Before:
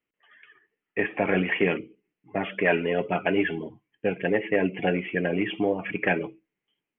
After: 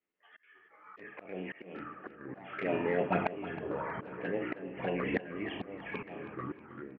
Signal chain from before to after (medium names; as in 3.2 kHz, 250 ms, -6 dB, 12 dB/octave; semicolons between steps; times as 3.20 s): spectral sustain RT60 0.41 s; touch-sensitive flanger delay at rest 11.7 ms, full sweep at -18.5 dBFS; compression 2.5:1, threshold -46 dBFS, peak gain reduction 18 dB; ever faster or slower copies 381 ms, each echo -6 st, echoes 3, each echo -6 dB; level rider gain up to 16 dB; slow attack 764 ms; low-pass 1.5 kHz 6 dB/octave; bass shelf 180 Hz -11 dB; feedback delay 317 ms, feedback 44%, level -14 dB